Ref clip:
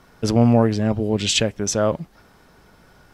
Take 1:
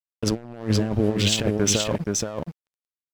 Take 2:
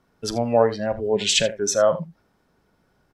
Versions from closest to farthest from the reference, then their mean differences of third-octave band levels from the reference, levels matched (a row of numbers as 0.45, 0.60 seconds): 2, 1; 6.0, 9.0 decibels